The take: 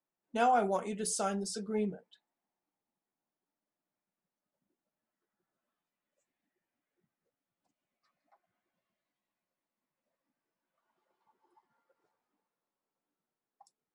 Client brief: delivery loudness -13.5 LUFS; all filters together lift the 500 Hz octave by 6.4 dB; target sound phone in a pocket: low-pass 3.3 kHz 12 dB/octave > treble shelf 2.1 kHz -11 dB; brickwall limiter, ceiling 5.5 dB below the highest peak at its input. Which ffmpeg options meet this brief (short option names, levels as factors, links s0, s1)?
-af "equalizer=f=500:t=o:g=9,alimiter=limit=0.126:level=0:latency=1,lowpass=3300,highshelf=f=2100:g=-11,volume=7.5"